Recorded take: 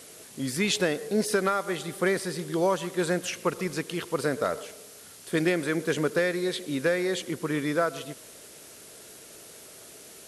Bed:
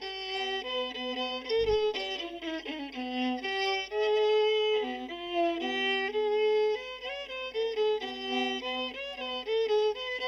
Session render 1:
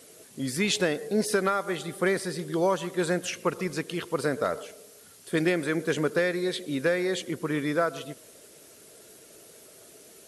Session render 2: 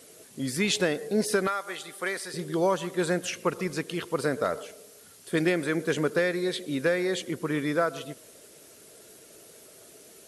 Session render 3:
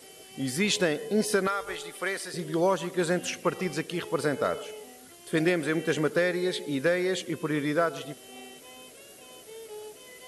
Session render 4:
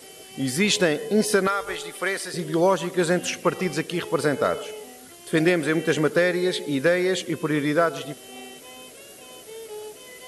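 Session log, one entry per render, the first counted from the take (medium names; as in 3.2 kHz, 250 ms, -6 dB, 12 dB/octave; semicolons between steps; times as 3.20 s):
noise reduction 6 dB, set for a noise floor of -48 dBFS
1.47–2.34 s: high-pass 1.1 kHz 6 dB/octave
add bed -16 dB
trim +5 dB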